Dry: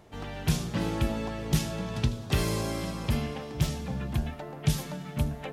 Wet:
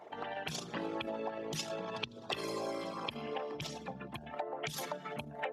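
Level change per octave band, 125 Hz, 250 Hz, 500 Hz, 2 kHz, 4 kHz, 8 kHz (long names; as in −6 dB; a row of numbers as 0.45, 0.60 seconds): −20.5, −12.5, −3.0, −4.0, −4.5, −8.0 decibels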